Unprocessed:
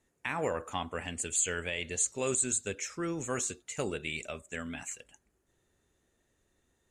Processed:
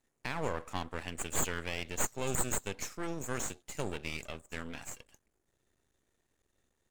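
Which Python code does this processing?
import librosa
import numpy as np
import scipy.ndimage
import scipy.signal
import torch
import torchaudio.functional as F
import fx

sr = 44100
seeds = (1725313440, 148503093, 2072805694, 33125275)

y = fx.tracing_dist(x, sr, depth_ms=0.05)
y = fx.high_shelf(y, sr, hz=8500.0, db=7.0, at=(2.81, 3.3))
y = np.maximum(y, 0.0)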